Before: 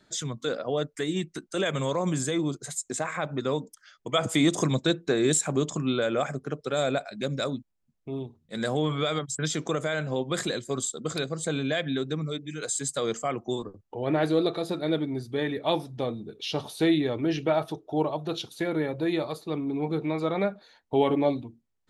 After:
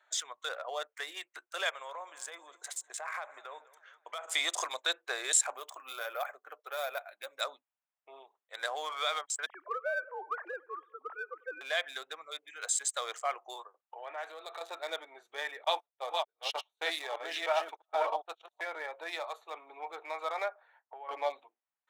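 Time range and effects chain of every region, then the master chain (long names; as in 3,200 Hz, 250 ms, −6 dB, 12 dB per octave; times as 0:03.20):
0:01.69–0:04.28: downward compressor, threshold −31 dBFS + repeating echo 200 ms, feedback 51%, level −19 dB
0:05.54–0:07.41: flanger 1.5 Hz, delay 1.1 ms, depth 3 ms, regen −46% + bad sample-rate conversion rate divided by 3×, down filtered, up hold
0:09.46–0:11.61: three sine waves on the formant tracks + low-pass filter 1,600 Hz 24 dB per octave + repeating echo 96 ms, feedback 59%, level −23.5 dB
0:13.61–0:14.61: low-shelf EQ 280 Hz −10.5 dB + downward compressor 3 to 1, threshold −31 dBFS
0:15.64–0:18.61: delay that plays each chunk backwards 304 ms, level −2.5 dB + noise gate −30 dBFS, range −33 dB
0:20.49–0:21.09: low-pass filter 1,800 Hz + downward compressor 12 to 1, threshold −32 dBFS
whole clip: adaptive Wiener filter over 9 samples; inverse Chebyshev high-pass filter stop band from 210 Hz, stop band 60 dB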